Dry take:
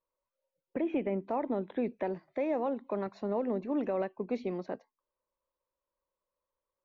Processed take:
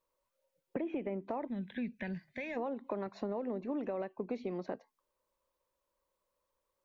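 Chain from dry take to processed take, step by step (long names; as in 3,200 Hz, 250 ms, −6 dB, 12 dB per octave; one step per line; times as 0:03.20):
gain on a spectral selection 0:01.48–0:02.57, 240–1,500 Hz −17 dB
downward compressor, threshold −40 dBFS, peak gain reduction 12.5 dB
level +5.5 dB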